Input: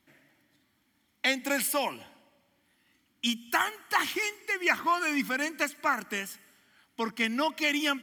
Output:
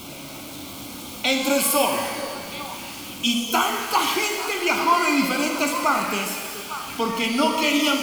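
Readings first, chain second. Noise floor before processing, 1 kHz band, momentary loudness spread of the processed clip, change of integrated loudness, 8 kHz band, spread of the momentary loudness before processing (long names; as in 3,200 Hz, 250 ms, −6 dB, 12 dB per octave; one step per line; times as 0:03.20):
−72 dBFS, +9.0 dB, 15 LU, +7.0 dB, +10.5 dB, 9 LU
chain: converter with a step at zero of −38 dBFS
Butterworth band-reject 1,800 Hz, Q 2.2
echo through a band-pass that steps 426 ms, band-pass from 410 Hz, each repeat 1.4 octaves, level −8 dB
reverb with rising layers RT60 1.4 s, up +12 semitones, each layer −8 dB, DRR 2 dB
level +6 dB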